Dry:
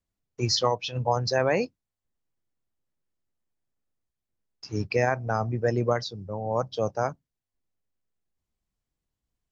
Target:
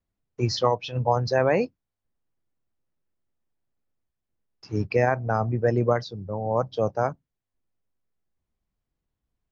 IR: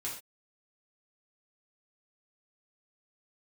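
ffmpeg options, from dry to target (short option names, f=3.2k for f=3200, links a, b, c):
-af "lowpass=f=2k:p=1,volume=3dB"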